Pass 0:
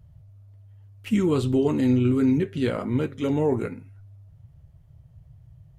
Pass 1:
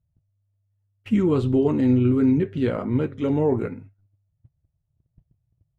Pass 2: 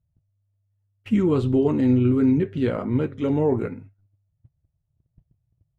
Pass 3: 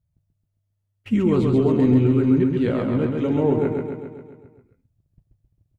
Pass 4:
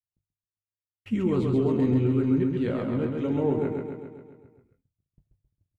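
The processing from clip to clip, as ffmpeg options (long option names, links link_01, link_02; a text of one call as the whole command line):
ffmpeg -i in.wav -af "agate=range=-24dB:threshold=-44dB:ratio=16:detection=peak,lowpass=frequency=1700:poles=1,volume=2dB" out.wav
ffmpeg -i in.wav -af anull out.wav
ffmpeg -i in.wav -af "aecho=1:1:134|268|402|536|670|804|938|1072:0.631|0.372|0.22|0.13|0.0765|0.0451|0.0266|0.0157" out.wav
ffmpeg -i in.wav -filter_complex "[0:a]agate=range=-33dB:threshold=-57dB:ratio=3:detection=peak,asplit=2[link_01][link_02];[link_02]adelay=22,volume=-12.5dB[link_03];[link_01][link_03]amix=inputs=2:normalize=0,volume=-6dB" out.wav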